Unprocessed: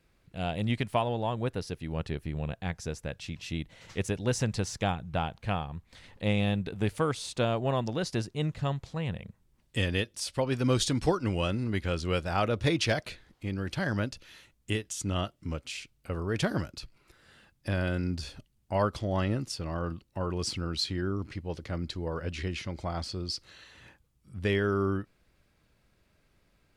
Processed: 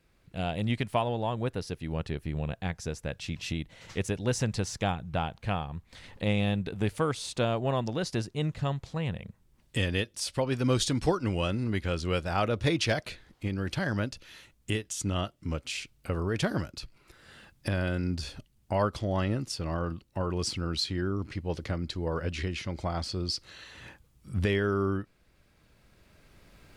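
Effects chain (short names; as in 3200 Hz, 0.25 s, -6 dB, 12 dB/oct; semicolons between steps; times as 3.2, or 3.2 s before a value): recorder AGC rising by 7.5 dB/s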